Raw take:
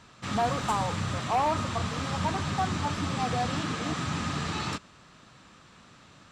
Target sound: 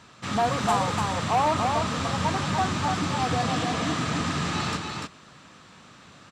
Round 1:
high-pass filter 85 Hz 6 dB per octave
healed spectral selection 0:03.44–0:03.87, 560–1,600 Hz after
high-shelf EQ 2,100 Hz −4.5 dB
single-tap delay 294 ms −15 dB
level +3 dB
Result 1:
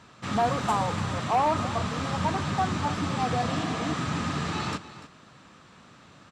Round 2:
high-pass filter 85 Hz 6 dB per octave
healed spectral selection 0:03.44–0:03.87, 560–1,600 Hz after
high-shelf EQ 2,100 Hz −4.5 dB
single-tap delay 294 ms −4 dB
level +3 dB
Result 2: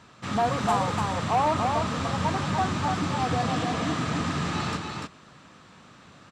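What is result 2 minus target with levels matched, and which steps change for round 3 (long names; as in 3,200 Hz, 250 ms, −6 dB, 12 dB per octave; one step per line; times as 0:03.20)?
4,000 Hz band −2.5 dB
remove: high-shelf EQ 2,100 Hz −4.5 dB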